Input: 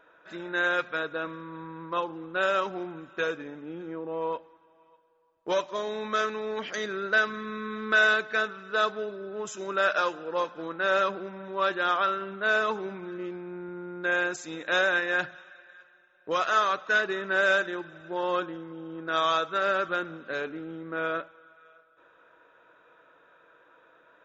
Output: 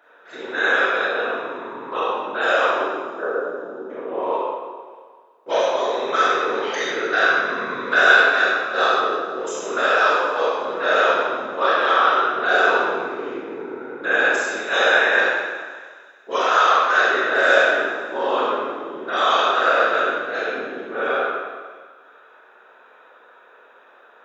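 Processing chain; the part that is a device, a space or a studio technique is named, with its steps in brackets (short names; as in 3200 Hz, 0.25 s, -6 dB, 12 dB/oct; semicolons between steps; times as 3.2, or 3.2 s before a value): 2.89–3.9 Chebyshev band-pass 250–1400 Hz, order 4; whispering ghost (whisperiser; HPF 410 Hz 12 dB/oct; reverb RT60 1.6 s, pre-delay 21 ms, DRR -7 dB); thin delay 0.162 s, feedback 69%, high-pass 4700 Hz, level -16 dB; gain +2 dB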